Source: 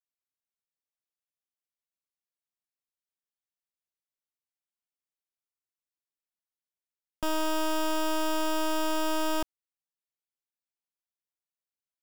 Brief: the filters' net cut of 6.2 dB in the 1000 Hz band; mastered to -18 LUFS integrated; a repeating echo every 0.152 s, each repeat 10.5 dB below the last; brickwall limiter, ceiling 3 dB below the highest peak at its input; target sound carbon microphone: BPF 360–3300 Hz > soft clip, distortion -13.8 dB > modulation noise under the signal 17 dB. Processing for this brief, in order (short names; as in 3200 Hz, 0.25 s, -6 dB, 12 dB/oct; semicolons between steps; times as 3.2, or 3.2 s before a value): bell 1000 Hz -7 dB; limiter -29 dBFS; BPF 360–3300 Hz; feedback echo 0.152 s, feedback 30%, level -10.5 dB; soft clip -34.5 dBFS; modulation noise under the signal 17 dB; gain +23 dB